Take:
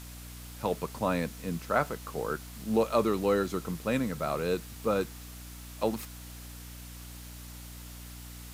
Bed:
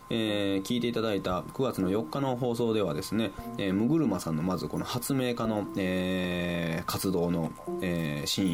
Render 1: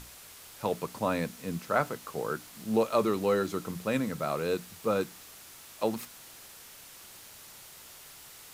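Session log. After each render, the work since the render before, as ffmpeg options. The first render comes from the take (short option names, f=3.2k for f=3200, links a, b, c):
-af "bandreject=f=60:t=h:w=6,bandreject=f=120:t=h:w=6,bandreject=f=180:t=h:w=6,bandreject=f=240:t=h:w=6,bandreject=f=300:t=h:w=6"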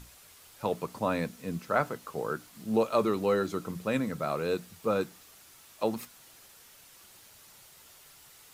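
-af "afftdn=nr=6:nf=-50"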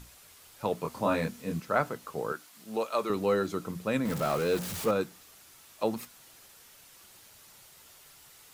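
-filter_complex "[0:a]asettb=1/sr,asplit=3[a][b][c];[a]atrim=end=0.824[d];[b]atrim=start=0.82:end=1.6,asetpts=PTS-STARTPTS,afade=t=in:d=0.004:c=qsin,afade=t=out:st=0.776:d=0.004:c=qsin,asplit=2[e][f];[f]adelay=25,volume=-3dB[g];[e][g]amix=inputs=2:normalize=0,atrim=end_sample=34398[h];[c]atrim=start=1.596[i];[d][h]acrossfade=d=0.004:c1=hsin:c2=qsin[j];[j][i]acrossfade=d=0.004:c1=qsin:c2=hsin,asettb=1/sr,asplit=3[k][l][m];[k]atrim=end=2.324[n];[l]atrim=start=2.32:end=3.1,asetpts=PTS-STARTPTS,afade=t=in:d=0.004:c=qsin,afade=t=out:st=0.776:d=0.004:c=qsin,highpass=f=700:p=1[o];[m]atrim=start=3.096[p];[n][o]acrossfade=d=0.004:c1=hsin:c2=qsin[q];[q][p]acrossfade=d=0.004:c1=qsin:c2=hsin,asettb=1/sr,asplit=3[r][s][t];[r]atrim=end=4.054[u];[s]atrim=start=4.05:end=4.91,asetpts=PTS-STARTPTS,afade=t=in:d=0.004:c=qsin,afade=t=out:st=0.856:d=0.004:c=qsin,aeval=exprs='val(0)+0.5*0.0251*sgn(val(0))':c=same[v];[t]atrim=start=4.906[w];[u][v]acrossfade=d=0.004:c1=hsin:c2=qsin[x];[x][w]acrossfade=d=0.004:c1=qsin:c2=hsin"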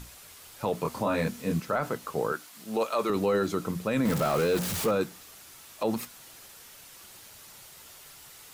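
-af "acontrast=33,alimiter=limit=-17.5dB:level=0:latency=1:release=21"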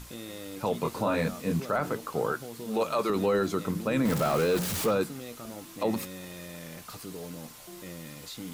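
-filter_complex "[1:a]volume=-13dB[a];[0:a][a]amix=inputs=2:normalize=0"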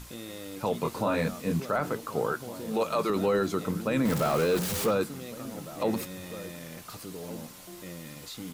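-filter_complex "[0:a]asplit=2[a][b];[b]adelay=1458,volume=-15dB,highshelf=f=4k:g=-32.8[c];[a][c]amix=inputs=2:normalize=0"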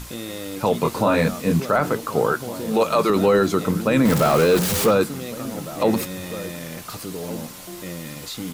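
-af "volume=9dB"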